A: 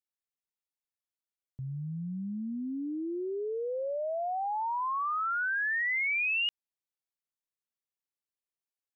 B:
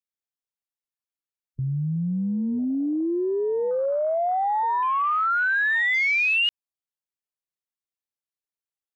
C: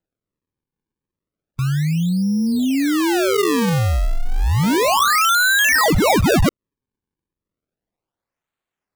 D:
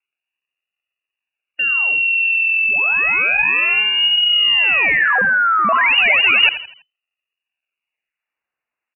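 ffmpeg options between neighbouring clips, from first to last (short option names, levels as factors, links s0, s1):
-filter_complex "[0:a]afwtdn=0.01,asplit=2[s0][s1];[s1]alimiter=level_in=4.22:limit=0.0631:level=0:latency=1,volume=0.237,volume=1.41[s2];[s0][s2]amix=inputs=2:normalize=0,volume=1.78"
-af "acrusher=samples=38:mix=1:aa=0.000001:lfo=1:lforange=60.8:lforate=0.32,volume=2.24"
-filter_complex "[0:a]lowpass=f=2500:t=q:w=0.5098,lowpass=f=2500:t=q:w=0.6013,lowpass=f=2500:t=q:w=0.9,lowpass=f=2500:t=q:w=2.563,afreqshift=-2900,asplit=5[s0][s1][s2][s3][s4];[s1]adelay=82,afreqshift=31,volume=0.237[s5];[s2]adelay=164,afreqshift=62,volume=0.0923[s6];[s3]adelay=246,afreqshift=93,volume=0.0359[s7];[s4]adelay=328,afreqshift=124,volume=0.0141[s8];[s0][s5][s6][s7][s8]amix=inputs=5:normalize=0,volume=1.19"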